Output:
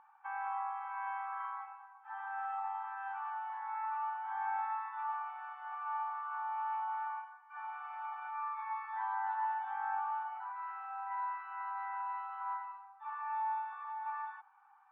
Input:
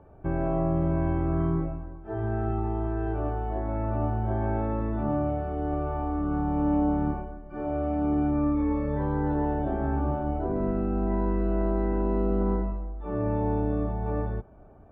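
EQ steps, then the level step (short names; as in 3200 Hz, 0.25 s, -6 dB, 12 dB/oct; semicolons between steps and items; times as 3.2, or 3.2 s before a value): brick-wall FIR high-pass 770 Hz; LPF 2500 Hz 12 dB/oct; +1.5 dB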